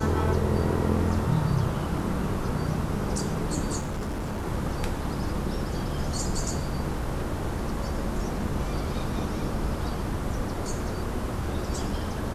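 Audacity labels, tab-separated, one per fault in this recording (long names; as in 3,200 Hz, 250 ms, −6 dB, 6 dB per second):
3.780000	4.460000	clipping −27.5 dBFS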